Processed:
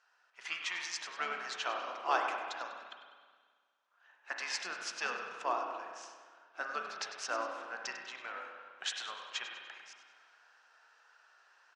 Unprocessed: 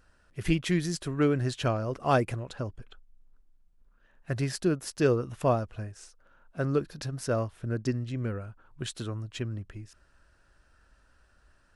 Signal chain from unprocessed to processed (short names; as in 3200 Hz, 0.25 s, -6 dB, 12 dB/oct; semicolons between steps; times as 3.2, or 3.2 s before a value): elliptic band-pass 840–6500 Hz, stop band 70 dB; harmoniser -12 st -13 dB; vocal rider within 3 dB 0.5 s; frequency-shifting echo 98 ms, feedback 43%, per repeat -34 Hz, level -12 dB; spring tank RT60 1.7 s, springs 32/50 ms, chirp 55 ms, DRR 3 dB